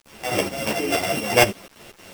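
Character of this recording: a buzz of ramps at a fixed pitch in blocks of 16 samples; tremolo saw up 4.2 Hz, depth 70%; a quantiser's noise floor 8-bit, dither none; a shimmering, thickened sound

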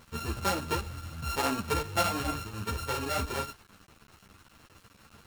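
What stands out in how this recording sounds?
a buzz of ramps at a fixed pitch in blocks of 32 samples; chopped level 4.9 Hz, depth 60%, duty 90%; a quantiser's noise floor 8-bit, dither none; a shimmering, thickened sound

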